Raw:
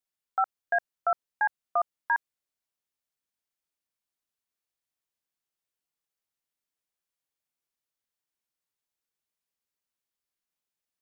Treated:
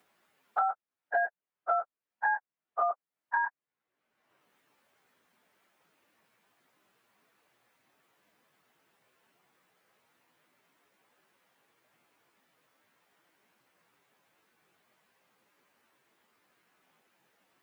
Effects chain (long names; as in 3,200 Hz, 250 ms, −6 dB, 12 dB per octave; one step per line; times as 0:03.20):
time stretch by phase vocoder 1.6×
multiband upward and downward compressor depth 100%